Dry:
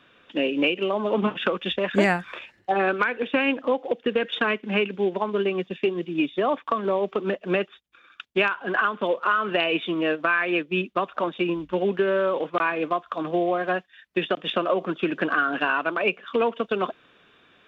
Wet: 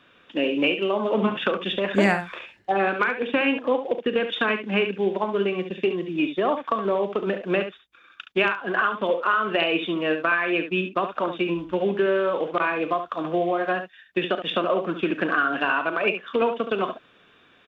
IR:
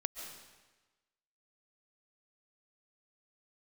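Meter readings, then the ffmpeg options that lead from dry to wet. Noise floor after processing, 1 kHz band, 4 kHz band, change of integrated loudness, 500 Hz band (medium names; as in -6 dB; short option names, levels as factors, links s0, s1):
-57 dBFS, +0.5 dB, +0.5 dB, +0.5 dB, +0.5 dB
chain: -af "aecho=1:1:36|70:0.188|0.355"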